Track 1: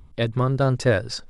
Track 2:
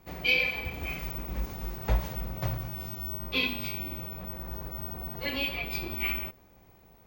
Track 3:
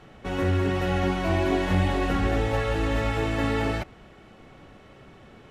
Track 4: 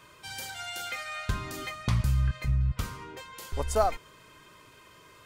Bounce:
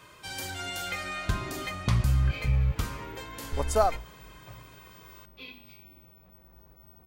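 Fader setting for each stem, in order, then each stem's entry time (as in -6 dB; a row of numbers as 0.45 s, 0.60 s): mute, -17.0 dB, -20.0 dB, +1.5 dB; mute, 2.05 s, 0.00 s, 0.00 s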